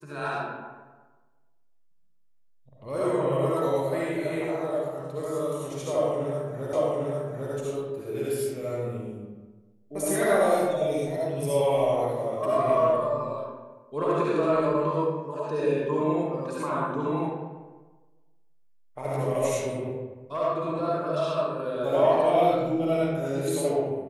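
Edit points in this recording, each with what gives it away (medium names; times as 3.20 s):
6.73 s: repeat of the last 0.8 s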